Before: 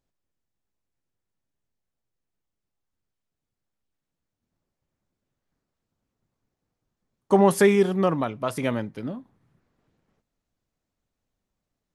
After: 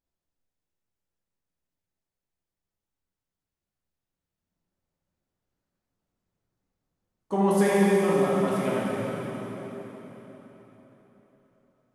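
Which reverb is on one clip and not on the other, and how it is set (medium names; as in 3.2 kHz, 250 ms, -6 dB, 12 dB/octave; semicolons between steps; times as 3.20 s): plate-style reverb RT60 4.3 s, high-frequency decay 0.85×, DRR -7.5 dB; trim -10 dB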